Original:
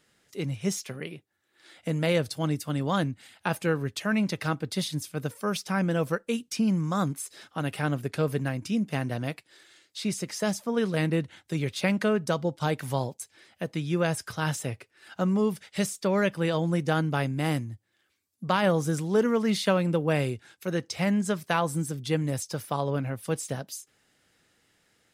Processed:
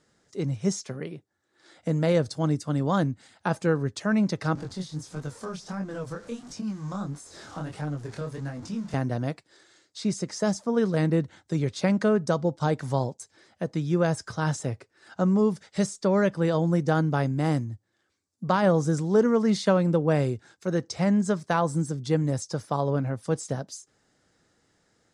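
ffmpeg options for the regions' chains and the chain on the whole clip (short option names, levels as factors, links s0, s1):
-filter_complex "[0:a]asettb=1/sr,asplit=3[s0][s1][s2];[s0]atrim=end=4.554[s3];[s1]atrim=start=4.55:end=8.94,asetpts=PTS-STARTPTS,afade=t=in:d=0.004:c=qsin,afade=t=out:st=4.386:d=0.004:c=qsin,aeval=exprs='val(0)+0.5*0.0158*sgn(val(0))':c=same,acrossover=split=170|880[s4][s5][s6];[s4]acompressor=threshold=0.0141:ratio=4[s7];[s5]acompressor=threshold=0.0141:ratio=4[s8];[s6]acompressor=threshold=0.0126:ratio=4[s9];[s7][s8][s9]amix=inputs=3:normalize=0,flanger=delay=20:depth=7.5:speed=1.5[s10];[s2]atrim=start=8.936[s11];[s3][s10]acrossfade=d=0.004:c1=hsin:c2=qsin[s12];[s12][s11]acrossfade=d=0.004:c1=qsin:c2=hsin,lowpass=f=7700:w=0.5412,lowpass=f=7700:w=1.3066,equalizer=f=2700:w=1.2:g=-11.5,volume=1.41"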